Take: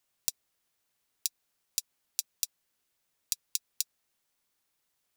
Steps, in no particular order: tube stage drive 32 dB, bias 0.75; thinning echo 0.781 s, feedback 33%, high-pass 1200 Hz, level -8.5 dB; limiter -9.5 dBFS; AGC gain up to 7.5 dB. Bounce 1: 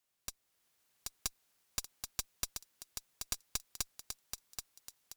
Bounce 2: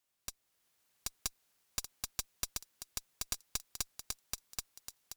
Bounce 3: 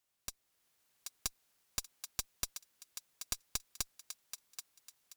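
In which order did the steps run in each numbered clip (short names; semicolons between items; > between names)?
limiter > thinning echo > tube stage > AGC; thinning echo > limiter > tube stage > AGC; limiter > tube stage > thinning echo > AGC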